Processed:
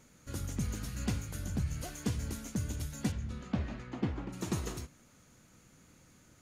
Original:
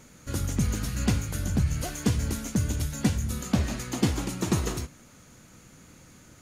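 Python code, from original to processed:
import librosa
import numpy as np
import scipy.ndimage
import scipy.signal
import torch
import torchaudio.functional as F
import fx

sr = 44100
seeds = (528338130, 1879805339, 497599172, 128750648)

y = fx.lowpass(x, sr, hz=fx.line((3.11, 4100.0), (4.32, 1800.0)), slope=12, at=(3.11, 4.32), fade=0.02)
y = y * librosa.db_to_amplitude(-9.0)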